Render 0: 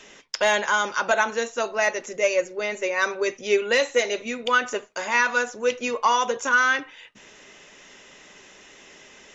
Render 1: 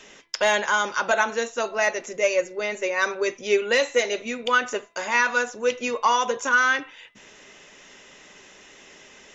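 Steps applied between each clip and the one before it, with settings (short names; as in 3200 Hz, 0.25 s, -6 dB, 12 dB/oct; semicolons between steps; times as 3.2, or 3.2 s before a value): de-hum 336.9 Hz, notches 12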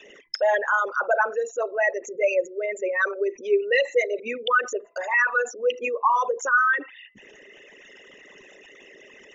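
formant sharpening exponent 3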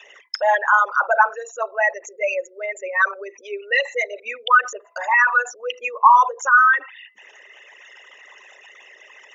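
resonant high-pass 910 Hz, resonance Q 2.2; gain +2.5 dB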